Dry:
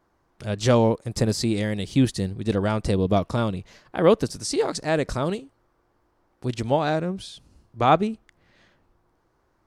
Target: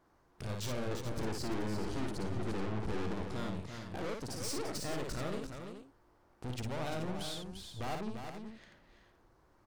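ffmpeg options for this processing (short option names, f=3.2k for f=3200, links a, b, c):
-filter_complex "[0:a]asettb=1/sr,asplit=3[a][b][c];[a]atrim=end=0.914[d];[b]atrim=start=0.91:end=3.23,asetpts=PTS-STARTPTS,afade=t=in:d=0.004:c=qsin,afade=t=out:st=2.316:d=0.004:c=qsin,lowshelf=f=550:t=q:w=3:g=12.5[e];[c]atrim=start=3.226[f];[d][e]acrossfade=d=0.004:c1=hsin:c2=qsin[g];[g][f]acrossfade=d=0.004:c1=qsin:c2=hsin,acompressor=threshold=-33dB:ratio=2,aeval=exprs='(tanh(89.1*val(0)+0.65)-tanh(0.65))/89.1':c=same,aecho=1:1:56|345|431:0.631|0.473|0.299,volume=1dB"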